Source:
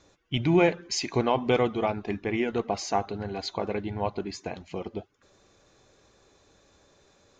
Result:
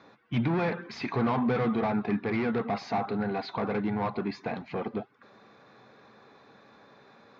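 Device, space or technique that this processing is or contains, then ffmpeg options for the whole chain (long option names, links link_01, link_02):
overdrive pedal into a guitar cabinet: -filter_complex "[0:a]asplit=2[link_01][link_02];[link_02]highpass=frequency=720:poles=1,volume=28dB,asoftclip=type=tanh:threshold=-10dB[link_03];[link_01][link_03]amix=inputs=2:normalize=0,lowpass=frequency=1300:poles=1,volume=-6dB,highpass=86,equalizer=frequency=87:width_type=q:width=4:gain=-4,equalizer=frequency=130:width_type=q:width=4:gain=8,equalizer=frequency=220:width_type=q:width=4:gain=9,equalizer=frequency=350:width_type=q:width=4:gain=-6,equalizer=frequency=580:width_type=q:width=4:gain=-6,equalizer=frequency=3000:width_type=q:width=4:gain=-8,lowpass=frequency=4300:width=0.5412,lowpass=frequency=4300:width=1.3066,volume=-8dB"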